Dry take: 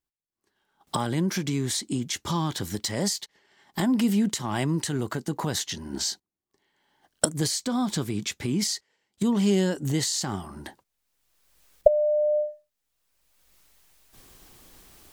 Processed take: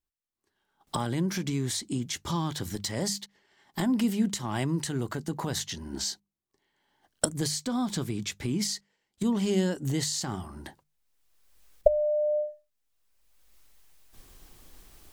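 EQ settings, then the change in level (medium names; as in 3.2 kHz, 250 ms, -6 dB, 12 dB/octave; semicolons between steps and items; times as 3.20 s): bass shelf 65 Hz +11.5 dB; hum notches 50/100/150/200 Hz; -3.5 dB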